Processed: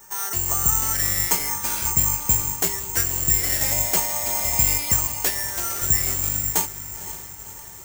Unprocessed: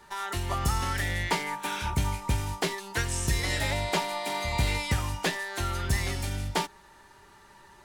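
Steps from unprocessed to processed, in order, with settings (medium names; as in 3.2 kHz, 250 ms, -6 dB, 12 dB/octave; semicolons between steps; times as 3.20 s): 5.07–5.82 s: high-pass 270 Hz; echo that smears into a reverb 518 ms, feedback 57%, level -12 dB; careless resampling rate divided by 6×, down filtered, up zero stuff; trim -1 dB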